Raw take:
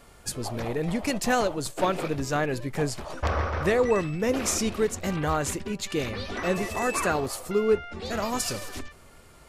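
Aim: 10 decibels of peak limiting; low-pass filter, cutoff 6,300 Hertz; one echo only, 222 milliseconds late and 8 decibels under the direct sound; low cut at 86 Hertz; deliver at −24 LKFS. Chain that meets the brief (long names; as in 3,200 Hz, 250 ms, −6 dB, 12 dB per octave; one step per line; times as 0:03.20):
high-pass filter 86 Hz
low-pass filter 6,300 Hz
brickwall limiter −22 dBFS
single-tap delay 222 ms −8 dB
level +7 dB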